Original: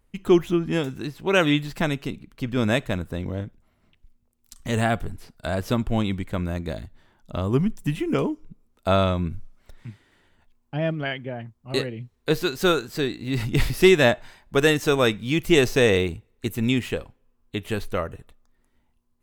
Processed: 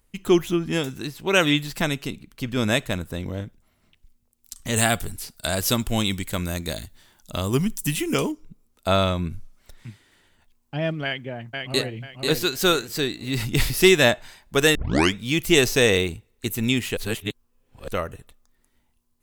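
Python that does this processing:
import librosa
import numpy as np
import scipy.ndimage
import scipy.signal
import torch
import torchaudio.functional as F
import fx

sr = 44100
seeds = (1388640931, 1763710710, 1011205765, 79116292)

y = fx.high_shelf(x, sr, hz=3500.0, db=11.5, at=(4.76, 8.32))
y = fx.echo_throw(y, sr, start_s=11.04, length_s=0.9, ms=490, feedback_pct=30, wet_db=-4.0)
y = fx.edit(y, sr, fx.tape_start(start_s=14.75, length_s=0.4),
    fx.reverse_span(start_s=16.97, length_s=0.91), tone=tone)
y = fx.high_shelf(y, sr, hz=3200.0, db=10.5)
y = F.gain(torch.from_numpy(y), -1.0).numpy()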